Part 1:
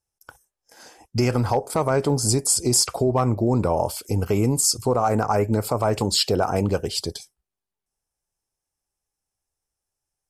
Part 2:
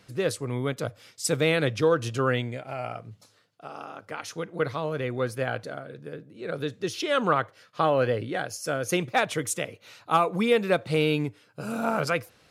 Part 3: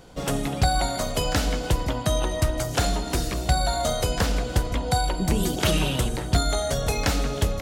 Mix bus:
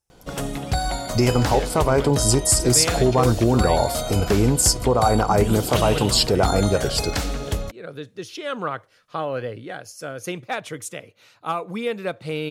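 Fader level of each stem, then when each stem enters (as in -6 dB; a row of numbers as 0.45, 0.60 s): +2.0, -4.0, -2.0 dB; 0.00, 1.35, 0.10 s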